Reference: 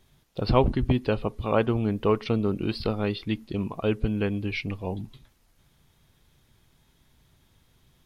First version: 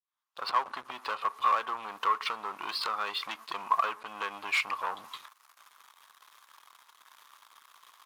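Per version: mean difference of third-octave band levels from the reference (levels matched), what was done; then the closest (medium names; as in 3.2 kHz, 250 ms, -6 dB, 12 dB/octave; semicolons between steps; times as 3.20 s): 15.0 dB: fade-in on the opening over 1.72 s; compression 12:1, threshold -32 dBFS, peak gain reduction 15.5 dB; waveshaping leveller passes 3; resonant high-pass 1.1 kHz, resonance Q 5.3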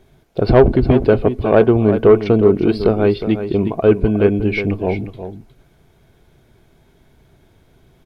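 5.0 dB: tilt shelf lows +4 dB, about 1.3 kHz; small resonant body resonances 400/660/1500/2200 Hz, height 9 dB, ringing for 20 ms; saturation -6 dBFS, distortion -17 dB; delay 361 ms -10.5 dB; trim +5 dB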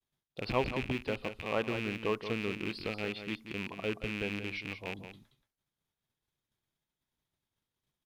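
8.5 dB: rattle on loud lows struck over -28 dBFS, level -18 dBFS; expander -51 dBFS; bass shelf 140 Hz -11 dB; on a send: delay 178 ms -9.5 dB; on the sum: trim -8.5 dB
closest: second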